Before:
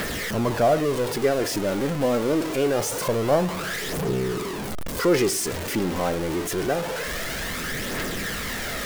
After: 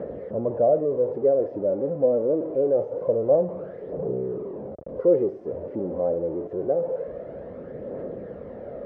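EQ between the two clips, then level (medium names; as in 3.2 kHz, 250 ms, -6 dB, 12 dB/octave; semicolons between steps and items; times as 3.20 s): high-pass 75 Hz; resonant low-pass 540 Hz, resonance Q 4.9; distance through air 59 m; -8.0 dB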